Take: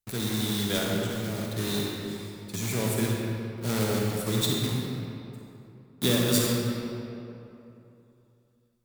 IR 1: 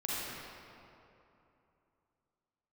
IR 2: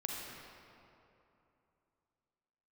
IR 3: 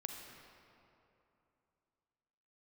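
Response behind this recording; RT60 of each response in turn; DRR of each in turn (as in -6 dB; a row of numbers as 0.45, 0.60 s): 2; 2.9, 2.9, 2.9 s; -8.0, -2.0, 2.5 dB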